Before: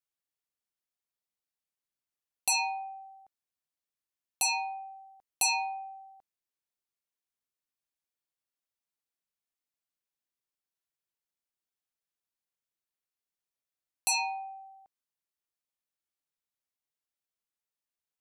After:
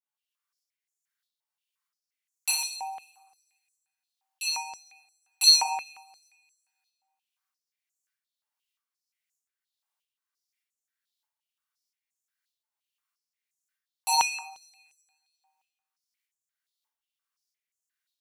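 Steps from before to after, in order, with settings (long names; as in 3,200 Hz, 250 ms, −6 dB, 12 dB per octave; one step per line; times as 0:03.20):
shaped tremolo saw up 1.6 Hz, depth 75%
coupled-rooms reverb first 0.63 s, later 1.8 s, from −22 dB, DRR −8 dB
high-pass on a step sequencer 5.7 Hz 880–6,900 Hz
level −3.5 dB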